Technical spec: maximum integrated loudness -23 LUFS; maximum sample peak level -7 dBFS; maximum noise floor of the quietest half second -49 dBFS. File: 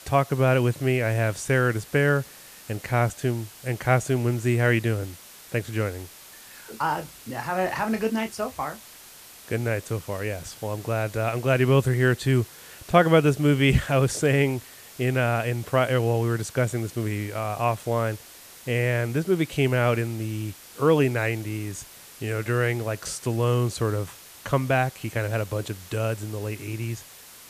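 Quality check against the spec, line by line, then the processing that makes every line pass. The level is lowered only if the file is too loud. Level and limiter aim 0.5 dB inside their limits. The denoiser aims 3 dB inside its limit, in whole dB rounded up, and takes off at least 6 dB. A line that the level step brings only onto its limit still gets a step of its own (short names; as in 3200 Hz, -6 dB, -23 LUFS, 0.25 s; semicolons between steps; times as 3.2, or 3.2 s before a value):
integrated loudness -25.0 LUFS: OK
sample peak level -5.0 dBFS: fail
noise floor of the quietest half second -47 dBFS: fail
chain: denoiser 6 dB, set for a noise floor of -47 dBFS; limiter -7.5 dBFS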